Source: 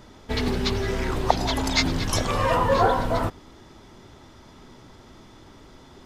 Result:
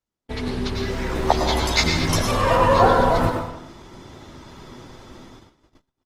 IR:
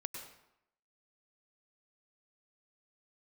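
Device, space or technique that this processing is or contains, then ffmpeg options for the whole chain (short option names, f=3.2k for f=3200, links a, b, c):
speakerphone in a meeting room: -filter_complex "[0:a]asplit=3[a][b][c];[a]afade=t=out:st=1.14:d=0.02[d];[b]asplit=2[e][f];[f]adelay=13,volume=-2dB[g];[e][g]amix=inputs=2:normalize=0,afade=t=in:st=1.14:d=0.02,afade=t=out:st=2.14:d=0.02[h];[c]afade=t=in:st=2.14:d=0.02[i];[d][h][i]amix=inputs=3:normalize=0[j];[1:a]atrim=start_sample=2205[k];[j][k]afir=irnorm=-1:irlink=0,dynaudnorm=f=240:g=9:m=8.5dB,agate=range=-38dB:threshold=-43dB:ratio=16:detection=peak" -ar 48000 -c:a libopus -b:a 24k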